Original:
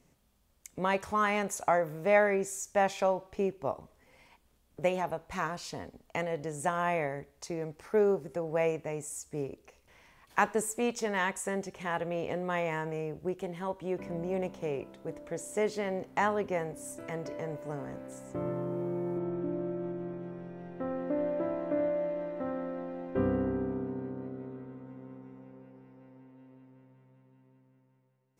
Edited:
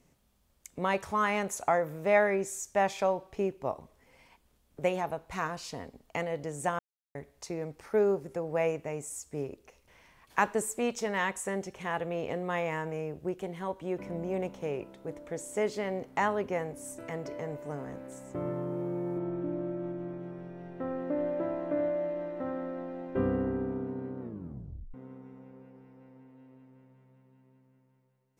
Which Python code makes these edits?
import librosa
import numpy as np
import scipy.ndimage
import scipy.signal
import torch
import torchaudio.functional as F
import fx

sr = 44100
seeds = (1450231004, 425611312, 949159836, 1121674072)

y = fx.edit(x, sr, fx.silence(start_s=6.79, length_s=0.36),
    fx.tape_stop(start_s=24.2, length_s=0.74), tone=tone)